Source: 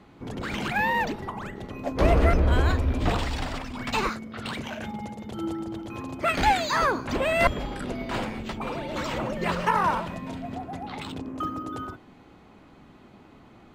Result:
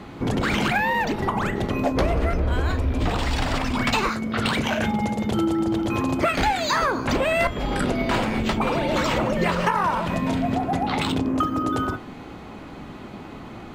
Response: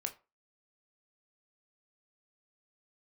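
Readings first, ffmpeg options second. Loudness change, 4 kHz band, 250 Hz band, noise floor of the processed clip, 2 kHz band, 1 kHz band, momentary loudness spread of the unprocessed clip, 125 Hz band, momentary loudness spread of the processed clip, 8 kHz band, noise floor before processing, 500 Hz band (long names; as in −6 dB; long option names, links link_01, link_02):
+4.0 dB, +6.0 dB, +7.5 dB, −39 dBFS, +4.0 dB, +3.5 dB, 13 LU, +3.0 dB, 16 LU, +5.5 dB, −52 dBFS, +4.0 dB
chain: -filter_complex "[0:a]acompressor=threshold=-32dB:ratio=10,asplit=2[link_01][link_02];[1:a]atrim=start_sample=2205[link_03];[link_02][link_03]afir=irnorm=-1:irlink=0,volume=-1.5dB[link_04];[link_01][link_04]amix=inputs=2:normalize=0,volume=8.5dB"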